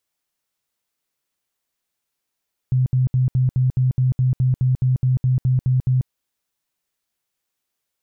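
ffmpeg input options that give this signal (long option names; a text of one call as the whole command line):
ffmpeg -f lavfi -i "aevalsrc='0.2*sin(2*PI*128*mod(t,0.21))*lt(mod(t,0.21),18/128)':duration=3.36:sample_rate=44100" out.wav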